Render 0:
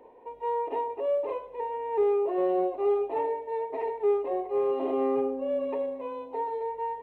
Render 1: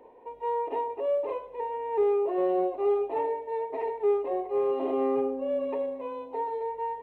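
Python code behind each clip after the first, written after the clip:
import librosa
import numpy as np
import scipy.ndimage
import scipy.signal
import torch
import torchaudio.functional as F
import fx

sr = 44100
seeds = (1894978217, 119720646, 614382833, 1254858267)

y = x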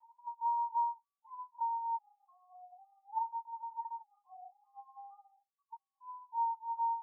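y = fx.spec_expand(x, sr, power=2.9)
y = fx.brickwall_highpass(y, sr, low_hz=750.0)
y = fx.lpc_vocoder(y, sr, seeds[0], excitation='pitch_kept', order=16)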